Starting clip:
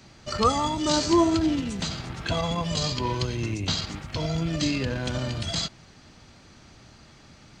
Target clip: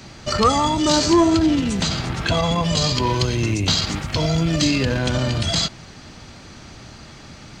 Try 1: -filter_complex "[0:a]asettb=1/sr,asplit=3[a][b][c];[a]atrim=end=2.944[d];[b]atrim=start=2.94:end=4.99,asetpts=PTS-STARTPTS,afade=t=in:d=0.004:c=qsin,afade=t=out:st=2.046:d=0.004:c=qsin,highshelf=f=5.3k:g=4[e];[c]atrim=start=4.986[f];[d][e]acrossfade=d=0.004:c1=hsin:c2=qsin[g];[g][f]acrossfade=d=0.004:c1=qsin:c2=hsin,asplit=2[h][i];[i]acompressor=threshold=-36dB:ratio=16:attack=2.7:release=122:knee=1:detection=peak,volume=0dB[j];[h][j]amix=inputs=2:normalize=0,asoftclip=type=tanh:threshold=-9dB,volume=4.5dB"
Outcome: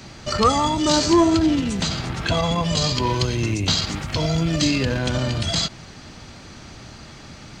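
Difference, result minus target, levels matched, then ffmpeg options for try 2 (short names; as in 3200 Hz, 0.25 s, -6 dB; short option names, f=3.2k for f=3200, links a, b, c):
compressor: peak gain reduction +6.5 dB
-filter_complex "[0:a]asettb=1/sr,asplit=3[a][b][c];[a]atrim=end=2.944[d];[b]atrim=start=2.94:end=4.99,asetpts=PTS-STARTPTS,afade=t=in:d=0.004:c=qsin,afade=t=out:st=2.046:d=0.004:c=qsin,highshelf=f=5.3k:g=4[e];[c]atrim=start=4.986[f];[d][e]acrossfade=d=0.004:c1=hsin:c2=qsin[g];[g][f]acrossfade=d=0.004:c1=qsin:c2=hsin,asplit=2[h][i];[i]acompressor=threshold=-29dB:ratio=16:attack=2.7:release=122:knee=1:detection=peak,volume=0dB[j];[h][j]amix=inputs=2:normalize=0,asoftclip=type=tanh:threshold=-9dB,volume=4.5dB"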